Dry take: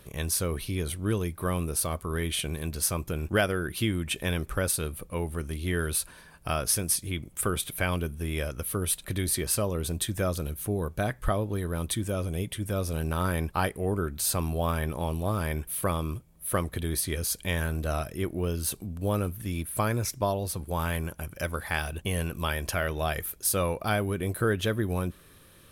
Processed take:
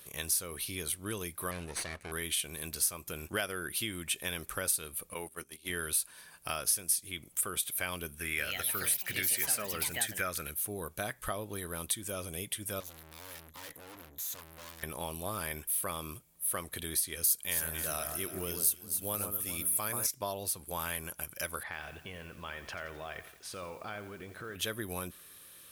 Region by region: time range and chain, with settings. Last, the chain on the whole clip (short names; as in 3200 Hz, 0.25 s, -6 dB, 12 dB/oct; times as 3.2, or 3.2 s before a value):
1.51–2.12 minimum comb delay 0.48 ms + air absorption 82 m
5.14–5.7 HPF 210 Hz 6 dB/oct + notches 50/100/150/200/250/300/350/400/450 Hz + gate -38 dBFS, range -16 dB
8.18–10.51 band shelf 1800 Hz +10.5 dB 1.1 oct + echoes that change speed 0.183 s, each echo +4 st, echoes 3, each echo -6 dB
12.8–14.83 ripple EQ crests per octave 1.1, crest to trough 15 dB + tube stage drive 42 dB, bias 0.75
17.24–20.07 high shelf 9100 Hz +11.5 dB + echo with dull and thin repeats by turns 0.135 s, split 1500 Hz, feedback 59%, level -6 dB
21.63–24.56 LPF 2500 Hz + compressor 4:1, threshold -33 dBFS + lo-fi delay 86 ms, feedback 55%, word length 9-bit, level -12 dB
whole clip: tilt +3 dB/oct; compressor 2:1, threshold -29 dBFS; gain -4 dB